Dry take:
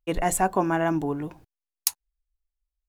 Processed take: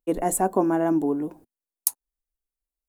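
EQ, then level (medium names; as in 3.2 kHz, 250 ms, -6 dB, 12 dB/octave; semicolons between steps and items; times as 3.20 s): FFT filter 130 Hz 0 dB, 240 Hz +15 dB, 460 Hz +13 dB, 2.6 kHz -2 dB, 5.8 kHz +3 dB, 9 kHz +12 dB; -9.5 dB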